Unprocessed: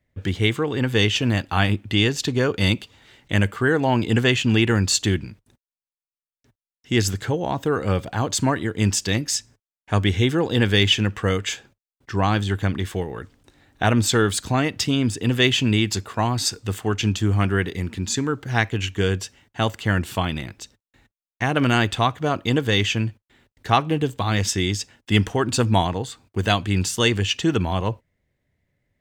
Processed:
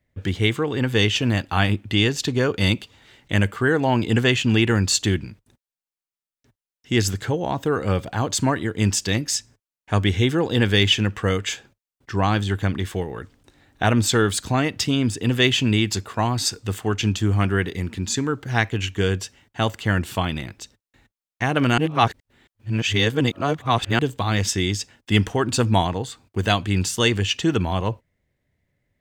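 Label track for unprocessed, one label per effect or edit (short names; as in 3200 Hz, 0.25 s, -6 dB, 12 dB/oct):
21.780000	23.990000	reverse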